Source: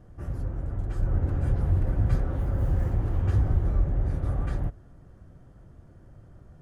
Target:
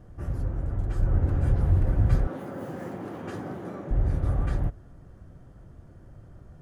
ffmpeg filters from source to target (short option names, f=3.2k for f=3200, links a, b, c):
-filter_complex "[0:a]asettb=1/sr,asplit=3[a][b][c];[a]atrim=end=2.274[d];[b]atrim=start=2.27:end=3.91,asetpts=PTS-STARTPTS,afade=t=in:d=0.004:c=qsin,afade=t=out:st=1.636:d=0.004:c=qsin,highpass=f=190:w=0.5412,highpass=f=190:w=1.3066[e];[c]atrim=start=3.906[f];[d][e]acrossfade=d=0.004:c1=hsin:c2=qsin[g];[g][f]acrossfade=d=0.004:c1=qsin:c2=hsin,volume=2dB"